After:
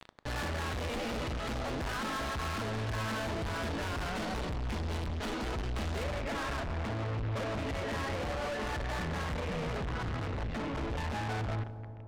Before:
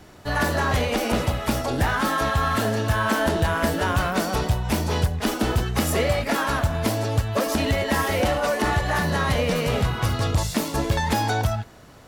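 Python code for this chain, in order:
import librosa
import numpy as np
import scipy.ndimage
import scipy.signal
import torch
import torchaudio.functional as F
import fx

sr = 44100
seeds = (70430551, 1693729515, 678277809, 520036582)

y = fx.low_shelf(x, sr, hz=64.0, db=10.5)
y = fx.quant_dither(y, sr, seeds[0], bits=6, dither='none')
y = fx.rider(y, sr, range_db=10, speed_s=0.5)
y = np.clip(10.0 ** (22.5 / 20.0) * y, -1.0, 1.0) / 10.0 ** (22.5 / 20.0)
y = fx.lowpass(y, sr, hz=fx.steps((0.0, 4200.0), (6.04, 2400.0)), slope=24)
y = 10.0 ** (-35.5 / 20.0) * np.tanh(y / 10.0 ** (-35.5 / 20.0))
y = fx.echo_wet_lowpass(y, sr, ms=100, feedback_pct=85, hz=740.0, wet_db=-15.5)
y = fx.rev_plate(y, sr, seeds[1], rt60_s=1.6, hf_ratio=0.75, predelay_ms=0, drr_db=17.5)
y = y * librosa.db_to_amplitude(1.0)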